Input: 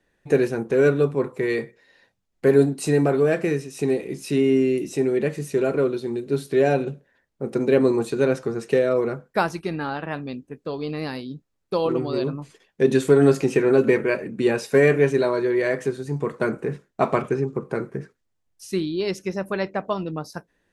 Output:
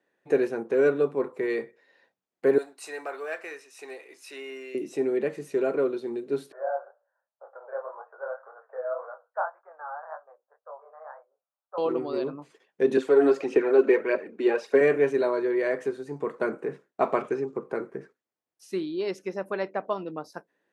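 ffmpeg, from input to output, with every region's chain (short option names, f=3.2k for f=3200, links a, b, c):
-filter_complex "[0:a]asettb=1/sr,asplit=3[a][b][c];[a]atrim=end=2.584[d];[b]atrim=start=2.58:end=4.75,asetpts=PTS-STARTPTS,afade=t=in:d=0.004:c=qsin,afade=t=out:st=2.166:d=0.004:c=qsin,highpass=1k,bandreject=f=3.2k:w=18,acrusher=bits=8:mode=log:mix=0:aa=0.000001[e];[c]atrim=start=4.746[f];[d][e]acrossfade=d=0.004:c1=hsin:c2=qsin[g];[g][f]acrossfade=d=0.004:c1=qsin:c2=hsin,asettb=1/sr,asplit=3[h][i][j];[h]atrim=end=6.524[k];[i]atrim=start=6.52:end=11.78,asetpts=PTS-STARTPTS,afade=t=in:d=0.004:c=qsin,afade=t=out:st=5.256:d=0.004:c=qsin,asuperpass=centerf=930:order=12:qfactor=0.93,flanger=delay=17.5:depth=8:speed=1.9[l];[j]atrim=start=11.776[m];[k][l]acrossfade=d=0.004:c1=hsin:c2=qsin[n];[n][m]acrossfade=d=0.004:c1=qsin:c2=hsin,asettb=1/sr,asplit=3[o][p][q];[o]atrim=end=12.974[r];[p]atrim=start=12.97:end=14.81,asetpts=PTS-STARTPTS,afade=t=in:d=0.004:c=qsin,afade=t=out:st=1.836:d=0.004:c=qsin,acrossover=split=210 6400:gain=0.178 1 0.224[s][t][u];[s][t][u]amix=inputs=3:normalize=0,aphaser=in_gain=1:out_gain=1:delay=3.3:decay=0.46:speed=1.7:type=triangular[v];[q]atrim=start=14.806[w];[r][v]acrossfade=d=0.004:c1=hsin:c2=qsin[x];[x][w]acrossfade=d=0.004:c1=qsin:c2=hsin,asettb=1/sr,asplit=3[y][z][aa];[y]atrim=end=17.184[ab];[z]atrim=start=17.18:end=17.58,asetpts=PTS-STARTPTS,afade=t=in:d=0.004:c=qsin,afade=t=out:st=0.396:d=0.004:c=qsin,lowpass=7.6k,aemphasis=mode=production:type=cd[ac];[aa]atrim=start=17.576[ad];[ab][ac]acrossfade=d=0.004:c1=hsin:c2=qsin[ae];[ae][ad]acrossfade=d=0.004:c1=qsin:c2=hsin,highpass=320,highshelf=f=2.7k:g=-10.5,volume=-2dB"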